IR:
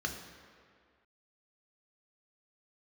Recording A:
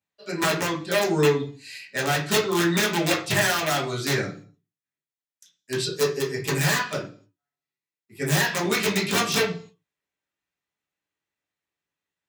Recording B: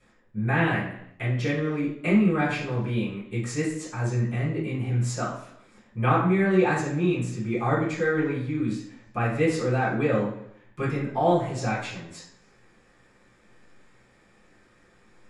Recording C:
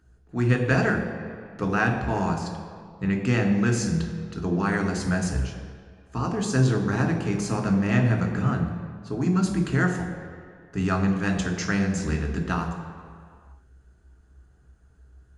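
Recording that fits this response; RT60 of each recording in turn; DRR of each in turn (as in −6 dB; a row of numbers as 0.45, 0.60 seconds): C; 0.45, 0.80, 2.0 seconds; −7.5, −13.0, 2.5 decibels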